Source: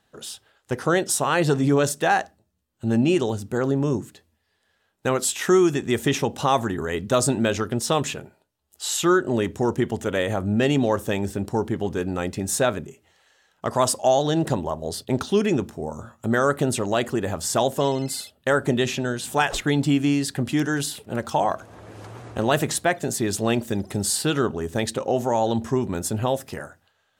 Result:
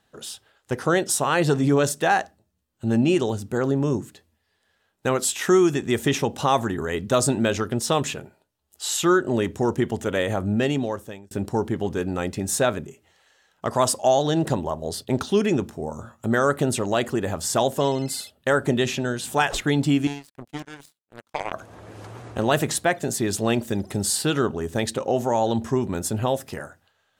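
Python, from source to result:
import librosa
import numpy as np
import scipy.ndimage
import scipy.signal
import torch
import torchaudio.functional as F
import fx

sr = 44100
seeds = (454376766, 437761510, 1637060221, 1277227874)

y = fx.power_curve(x, sr, exponent=3.0, at=(20.07, 21.53))
y = fx.edit(y, sr, fx.fade_out_span(start_s=10.47, length_s=0.84), tone=tone)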